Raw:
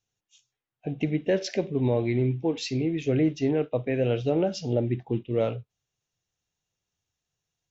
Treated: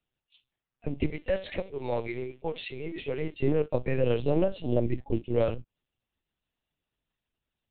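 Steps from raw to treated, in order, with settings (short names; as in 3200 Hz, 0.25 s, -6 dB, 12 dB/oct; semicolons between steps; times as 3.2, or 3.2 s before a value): 1.1–3.43 HPF 530 Hz 12 dB/oct; LPC vocoder at 8 kHz pitch kept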